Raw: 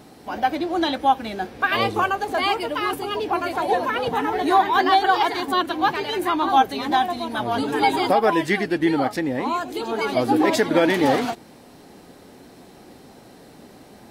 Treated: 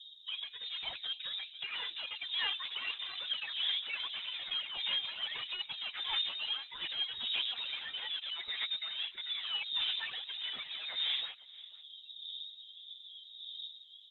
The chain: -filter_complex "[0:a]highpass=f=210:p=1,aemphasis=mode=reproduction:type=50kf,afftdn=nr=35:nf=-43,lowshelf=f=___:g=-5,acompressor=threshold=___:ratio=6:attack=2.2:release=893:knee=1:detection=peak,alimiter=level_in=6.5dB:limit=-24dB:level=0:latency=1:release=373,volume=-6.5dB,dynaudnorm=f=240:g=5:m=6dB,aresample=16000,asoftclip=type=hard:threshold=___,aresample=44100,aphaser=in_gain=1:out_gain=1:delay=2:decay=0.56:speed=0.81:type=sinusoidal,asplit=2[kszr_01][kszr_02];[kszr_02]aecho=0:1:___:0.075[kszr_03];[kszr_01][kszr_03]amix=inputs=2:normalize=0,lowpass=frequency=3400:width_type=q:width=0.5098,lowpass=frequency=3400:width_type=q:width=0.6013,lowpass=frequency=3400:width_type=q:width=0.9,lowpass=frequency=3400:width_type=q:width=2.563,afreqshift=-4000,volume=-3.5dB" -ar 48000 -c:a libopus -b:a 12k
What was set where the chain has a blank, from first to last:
470, -26dB, -33dB, 492